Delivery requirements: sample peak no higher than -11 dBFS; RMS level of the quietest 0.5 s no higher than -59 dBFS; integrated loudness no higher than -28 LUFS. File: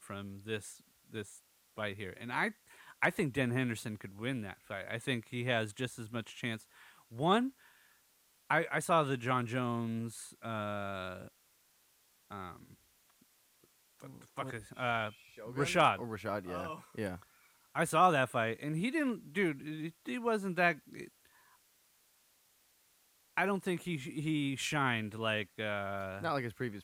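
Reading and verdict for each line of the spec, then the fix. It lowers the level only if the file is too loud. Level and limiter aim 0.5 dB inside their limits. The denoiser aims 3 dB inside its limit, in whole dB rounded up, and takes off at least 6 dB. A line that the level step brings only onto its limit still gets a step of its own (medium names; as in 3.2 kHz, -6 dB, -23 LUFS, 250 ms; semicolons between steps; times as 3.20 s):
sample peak -13.0 dBFS: pass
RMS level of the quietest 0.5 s -70 dBFS: pass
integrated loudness -35.0 LUFS: pass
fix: none needed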